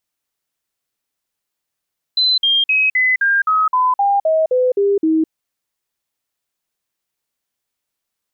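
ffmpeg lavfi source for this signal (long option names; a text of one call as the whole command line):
ffmpeg -f lavfi -i "aevalsrc='0.266*clip(min(mod(t,0.26),0.21-mod(t,0.26))/0.005,0,1)*sin(2*PI*4040*pow(2,-floor(t/0.26)/3)*mod(t,0.26))':duration=3.12:sample_rate=44100" out.wav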